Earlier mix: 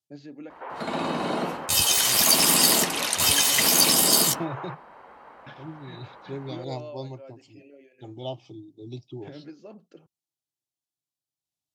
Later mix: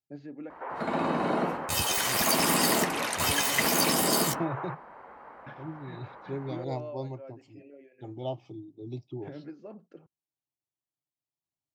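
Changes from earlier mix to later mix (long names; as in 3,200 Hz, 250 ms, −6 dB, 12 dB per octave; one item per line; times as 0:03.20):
first voice: add high-shelf EQ 4,300 Hz −6 dB
master: add flat-topped bell 6,300 Hz −9 dB 2.6 octaves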